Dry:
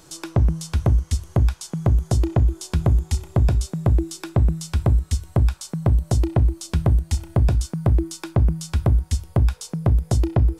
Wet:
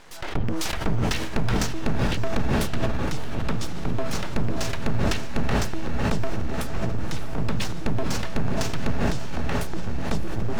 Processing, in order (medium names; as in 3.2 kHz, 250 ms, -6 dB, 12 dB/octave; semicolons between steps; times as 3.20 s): pitch shift switched off and on -11.5 st, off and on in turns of 217 ms; low-pass 1.7 kHz 12 dB/octave; tilt EQ +3.5 dB/octave; full-wave rectifier; on a send: echo that smears into a reverb 604 ms, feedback 62%, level -8 dB; on the sum: saturation -20 dBFS, distortion -17 dB; decay stretcher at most 22 dB/s; trim +8.5 dB